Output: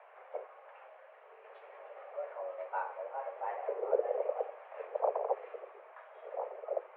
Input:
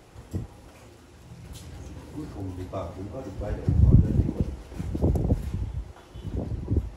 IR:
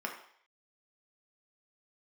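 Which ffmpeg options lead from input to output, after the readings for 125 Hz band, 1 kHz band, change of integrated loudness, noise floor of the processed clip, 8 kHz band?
under -40 dB, +6.0 dB, -10.5 dB, -57 dBFS, n/a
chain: -af "highpass=f=220:t=q:w=0.5412,highpass=f=220:t=q:w=1.307,lowpass=f=2.2k:t=q:w=0.5176,lowpass=f=2.2k:t=q:w=0.7071,lowpass=f=2.2k:t=q:w=1.932,afreqshift=280,acontrast=28,volume=-7.5dB"

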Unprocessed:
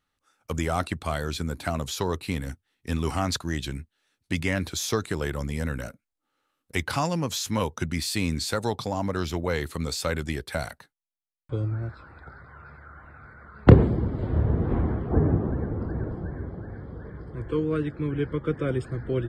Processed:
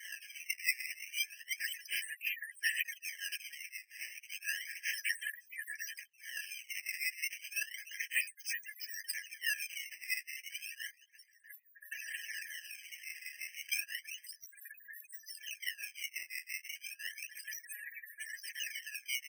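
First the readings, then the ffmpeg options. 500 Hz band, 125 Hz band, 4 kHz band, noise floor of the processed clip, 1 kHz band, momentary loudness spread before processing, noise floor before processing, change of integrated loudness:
under -40 dB, under -40 dB, -6.0 dB, -66 dBFS, under -40 dB, 15 LU, -82 dBFS, -12.0 dB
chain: -filter_complex "[0:a]aeval=exprs='val(0)+0.5*0.141*sgn(val(0))':c=same,afftfilt=real='re*gte(hypot(re,im),0.0794)':imag='im*gte(hypot(re,im),0.0794)':win_size=1024:overlap=0.75,asplit=3[a][b][c];[a]bandpass=f=530:t=q:w=8,volume=0dB[d];[b]bandpass=f=1.84k:t=q:w=8,volume=-6dB[e];[c]bandpass=f=2.48k:t=q:w=8,volume=-9dB[f];[d][e][f]amix=inputs=3:normalize=0,bass=f=250:g=-6,treble=f=4k:g=14,asplit=2[g][h];[h]adelay=640,lowpass=f=940:p=1,volume=-18.5dB,asplit=2[i][j];[j]adelay=640,lowpass=f=940:p=1,volume=0.31,asplit=2[k][l];[l]adelay=640,lowpass=f=940:p=1,volume=0.31[m];[i][k][m]amix=inputs=3:normalize=0[n];[g][n]amix=inputs=2:normalize=0,aresample=32000,aresample=44100,acrossover=split=1500[o][p];[o]aeval=exprs='val(0)*(1-1/2+1/2*cos(2*PI*5.8*n/s))':c=same[q];[p]aeval=exprs='val(0)*(1-1/2-1/2*cos(2*PI*5.8*n/s))':c=same[r];[q][r]amix=inputs=2:normalize=0,asplit=2[s][t];[t]adelay=12,volume=-6dB[u];[s][u]amix=inputs=2:normalize=0,acrusher=samples=16:mix=1:aa=0.000001:lfo=1:lforange=25.6:lforate=0.32,equalizer=f=4k:t=o:w=0.43:g=-5,afftfilt=real='re*eq(mod(floor(b*sr/1024/1600),2),1)':imag='im*eq(mod(floor(b*sr/1024/1600),2),1)':win_size=1024:overlap=0.75,volume=7.5dB"

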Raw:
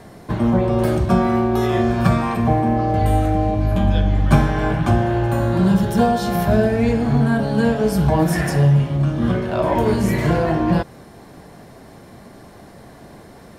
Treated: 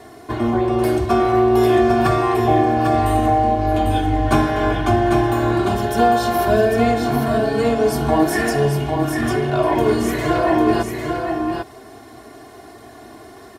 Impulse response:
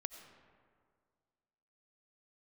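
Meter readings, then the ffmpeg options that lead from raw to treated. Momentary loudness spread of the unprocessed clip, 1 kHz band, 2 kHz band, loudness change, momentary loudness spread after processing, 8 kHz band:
3 LU, +4.5 dB, +2.5 dB, +0.5 dB, 6 LU, +3.0 dB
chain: -filter_complex "[0:a]highpass=f=150:p=1,aecho=1:1:2.8:0.98,asplit=2[a][b];[b]aecho=0:1:799:0.562[c];[a][c]amix=inputs=2:normalize=0,volume=-1dB"

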